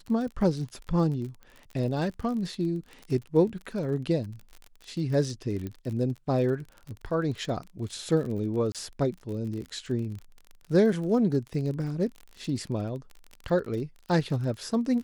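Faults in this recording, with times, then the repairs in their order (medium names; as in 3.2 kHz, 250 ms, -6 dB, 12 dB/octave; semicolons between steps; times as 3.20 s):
crackle 40 per s -35 dBFS
5.67 s: pop -23 dBFS
8.72–8.75 s: dropout 27 ms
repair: de-click; interpolate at 8.72 s, 27 ms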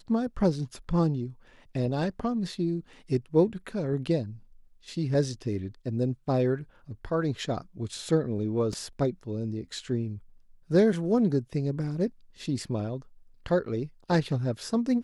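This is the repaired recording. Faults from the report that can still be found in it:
nothing left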